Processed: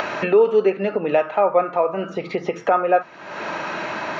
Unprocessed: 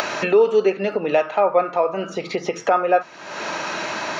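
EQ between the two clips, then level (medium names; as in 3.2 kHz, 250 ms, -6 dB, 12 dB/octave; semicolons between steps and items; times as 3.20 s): tone controls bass +2 dB, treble -14 dB; 0.0 dB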